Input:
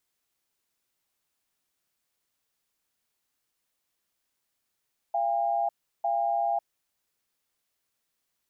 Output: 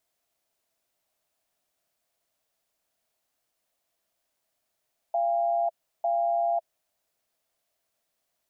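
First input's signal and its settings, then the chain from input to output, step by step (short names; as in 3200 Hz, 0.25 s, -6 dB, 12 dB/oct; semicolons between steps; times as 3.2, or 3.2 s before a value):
cadence 686 Hz, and 806 Hz, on 0.55 s, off 0.35 s, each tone -26.5 dBFS 1.61 s
limiter -28.5 dBFS; bell 650 Hz +13 dB 0.44 oct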